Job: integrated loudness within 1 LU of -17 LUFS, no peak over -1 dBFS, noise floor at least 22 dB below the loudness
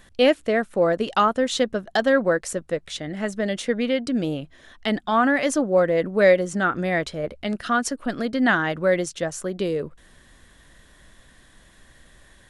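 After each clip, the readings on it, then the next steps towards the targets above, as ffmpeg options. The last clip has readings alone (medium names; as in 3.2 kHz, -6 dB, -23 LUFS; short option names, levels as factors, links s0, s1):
loudness -22.5 LUFS; peak level -5.0 dBFS; loudness target -17.0 LUFS
-> -af "volume=1.88,alimiter=limit=0.891:level=0:latency=1"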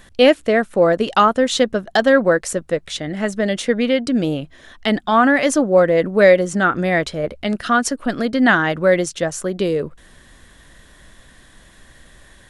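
loudness -17.5 LUFS; peak level -1.0 dBFS; noise floor -48 dBFS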